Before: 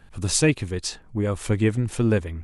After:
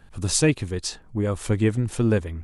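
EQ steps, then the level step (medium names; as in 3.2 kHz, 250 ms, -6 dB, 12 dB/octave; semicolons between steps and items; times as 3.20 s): peaking EQ 2.3 kHz -2.5 dB; 0.0 dB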